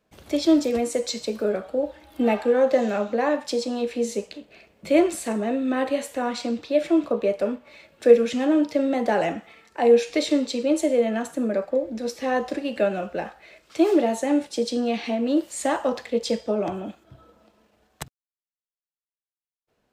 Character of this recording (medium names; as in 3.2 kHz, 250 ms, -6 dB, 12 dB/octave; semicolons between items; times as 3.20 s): noise floor -96 dBFS; spectral tilt -4.0 dB/octave